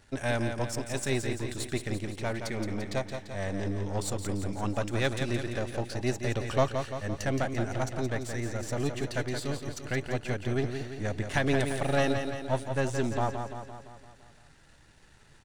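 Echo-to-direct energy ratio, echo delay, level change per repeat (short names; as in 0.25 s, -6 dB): -5.5 dB, 0.171 s, -5.0 dB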